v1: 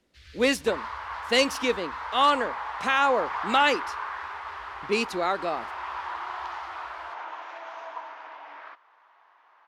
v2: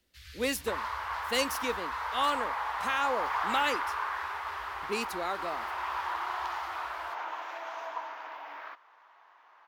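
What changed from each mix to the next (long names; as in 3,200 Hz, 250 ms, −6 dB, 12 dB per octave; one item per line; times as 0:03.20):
speech −8.5 dB
master: remove high-frequency loss of the air 64 metres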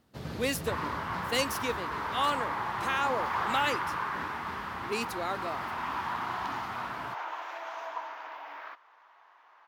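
first sound: remove inverse Chebyshev band-stop filter 180–700 Hz, stop band 60 dB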